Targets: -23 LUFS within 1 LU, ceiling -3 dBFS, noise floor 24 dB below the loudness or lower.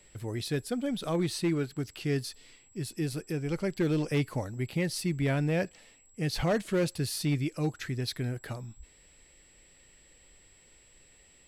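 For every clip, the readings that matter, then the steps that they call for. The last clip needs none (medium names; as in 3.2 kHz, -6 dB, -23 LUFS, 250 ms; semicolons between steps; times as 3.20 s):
clipped samples 0.8%; clipping level -21.5 dBFS; steady tone 7.7 kHz; tone level -60 dBFS; loudness -31.5 LUFS; peak level -21.5 dBFS; loudness target -23.0 LUFS
-> clip repair -21.5 dBFS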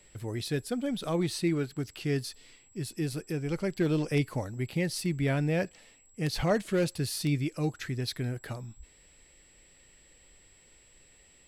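clipped samples 0.0%; steady tone 7.7 kHz; tone level -60 dBFS
-> band-stop 7.7 kHz, Q 30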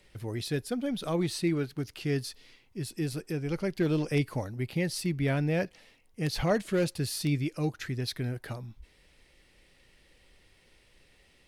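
steady tone not found; loudness -31.5 LUFS; peak level -14.5 dBFS; loudness target -23.0 LUFS
-> trim +8.5 dB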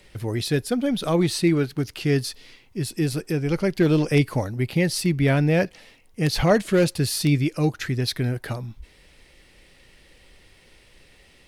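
loudness -23.0 LUFS; peak level -6.0 dBFS; noise floor -55 dBFS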